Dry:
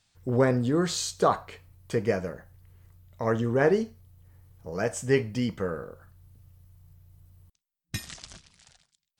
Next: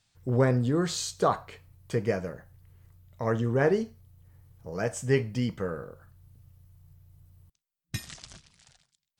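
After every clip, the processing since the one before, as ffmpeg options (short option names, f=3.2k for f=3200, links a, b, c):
-af "equalizer=f=130:w=3.3:g=5,volume=-2dB"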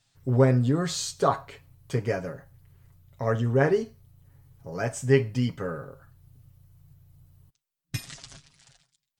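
-af "aecho=1:1:7.3:0.65"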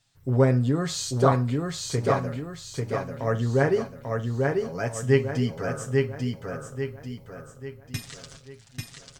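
-af "aecho=1:1:842|1684|2526|3368|4210:0.708|0.297|0.125|0.0525|0.022"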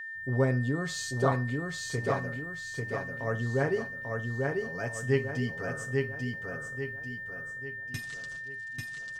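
-af "aeval=exprs='val(0)+0.0282*sin(2*PI*1800*n/s)':c=same,volume=-6.5dB"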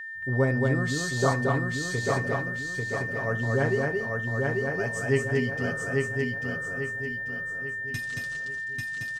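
-af "aecho=1:1:225:0.708,volume=2dB"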